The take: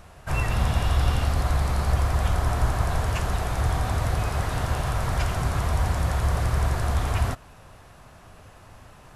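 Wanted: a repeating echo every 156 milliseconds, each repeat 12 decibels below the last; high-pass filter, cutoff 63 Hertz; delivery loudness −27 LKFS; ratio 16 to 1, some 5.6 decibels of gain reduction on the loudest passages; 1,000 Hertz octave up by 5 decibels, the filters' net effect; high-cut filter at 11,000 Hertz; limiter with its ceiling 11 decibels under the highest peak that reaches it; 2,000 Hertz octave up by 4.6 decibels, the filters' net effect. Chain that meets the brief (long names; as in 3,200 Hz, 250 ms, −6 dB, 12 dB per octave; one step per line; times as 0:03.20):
high-pass filter 63 Hz
low-pass filter 11,000 Hz
parametric band 1,000 Hz +5.5 dB
parametric band 2,000 Hz +4 dB
downward compressor 16 to 1, threshold −24 dBFS
brickwall limiter −26.5 dBFS
repeating echo 156 ms, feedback 25%, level −12 dB
level +8 dB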